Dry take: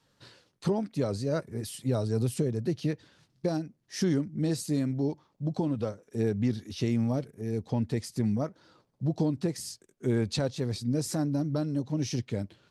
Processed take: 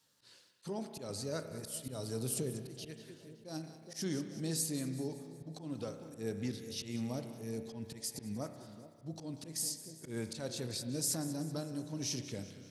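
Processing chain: HPF 94 Hz 6 dB/oct; pre-emphasis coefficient 0.8; on a send: split-band echo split 880 Hz, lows 0.421 s, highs 0.189 s, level -15 dB; on the sum: auto swell 0.13 s; spring tank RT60 1.8 s, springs 31 ms, chirp 80 ms, DRR 8 dB; gain +4 dB

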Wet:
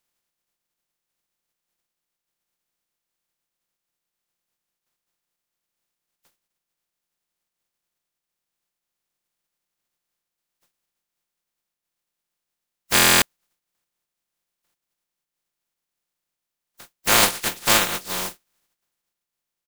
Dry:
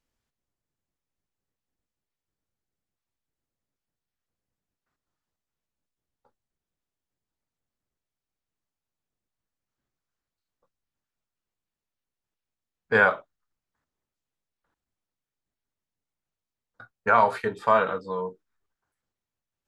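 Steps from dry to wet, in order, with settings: spectral contrast lowered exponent 0.14; comb 5.7 ms, depth 36%; stuck buffer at 12.94, samples 1024, times 11; gain +2.5 dB

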